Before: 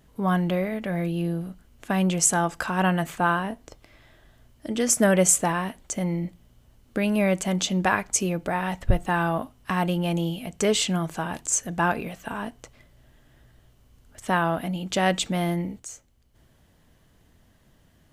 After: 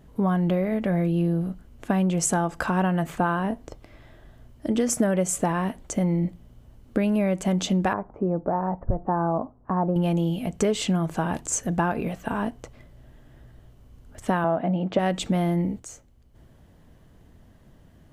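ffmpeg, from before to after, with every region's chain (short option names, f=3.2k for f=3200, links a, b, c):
-filter_complex "[0:a]asettb=1/sr,asplit=3[a][b][c];[a]atrim=end=7.934[d];[b]atrim=start=7.93:end=9.96,asetpts=PTS-STARTPTS,afade=t=in:d=0.004:c=qsin,afade=t=out:st=2.026:d=0.004:c=qsin,lowpass=f=1.1k:w=0.5412,lowpass=f=1.1k:w=1.3066,lowshelf=f=230:g=-8[e];[c]atrim=start=9.956[f];[d][e]acrossfade=d=0.004:c1=hsin:c2=qsin[g];[g][f]acrossfade=d=0.004:c1=qsin:c2=hsin,asettb=1/sr,asplit=3[h][i][j];[h]atrim=end=14.444[k];[i]atrim=start=14.44:end=14.99,asetpts=PTS-STARTPTS,afade=t=in:d=0.004:c=qsin,afade=t=out:st=0.546:d=0.004:c=qsin,highpass=130,lowpass=2.4k,equalizer=f=650:t=o:w=0.82:g=7[l];[j]atrim=start=14.986[m];[k][l]acrossfade=d=0.004:c1=hsin:c2=qsin[n];[n][m]acrossfade=d=0.004:c1=qsin:c2=hsin,tiltshelf=f=1.3k:g=5,acompressor=threshold=-21dB:ratio=6,volume=2dB"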